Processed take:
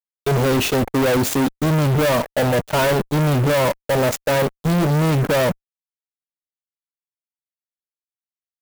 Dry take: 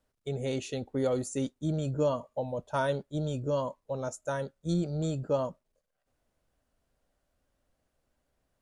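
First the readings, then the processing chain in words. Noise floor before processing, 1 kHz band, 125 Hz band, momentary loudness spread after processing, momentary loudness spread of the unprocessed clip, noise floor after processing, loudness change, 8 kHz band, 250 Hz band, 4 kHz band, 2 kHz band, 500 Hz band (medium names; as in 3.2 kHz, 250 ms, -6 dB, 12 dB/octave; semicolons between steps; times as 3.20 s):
-81 dBFS, +14.5 dB, +14.5 dB, 3 LU, 6 LU, under -85 dBFS, +14.0 dB, +16.0 dB, +13.5 dB, +18.5 dB, +19.5 dB, +12.5 dB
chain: dynamic bell 8.2 kHz, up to -7 dB, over -60 dBFS, Q 0.84; fuzz box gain 46 dB, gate -51 dBFS; sampling jitter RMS 0.026 ms; trim -2.5 dB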